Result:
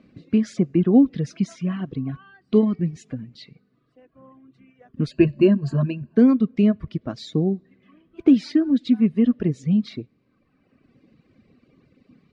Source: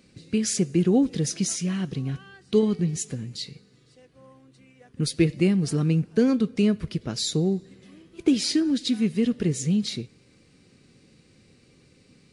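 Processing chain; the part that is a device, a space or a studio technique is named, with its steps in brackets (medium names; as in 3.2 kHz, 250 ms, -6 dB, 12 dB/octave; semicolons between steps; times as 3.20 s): 5.11–6.15 s: rippled EQ curve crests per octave 1.4, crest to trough 15 dB; reverb removal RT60 1.6 s; inside a cardboard box (low-pass 2.5 kHz 12 dB/octave; small resonant body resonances 250/640/1100 Hz, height 8 dB, ringing for 25 ms)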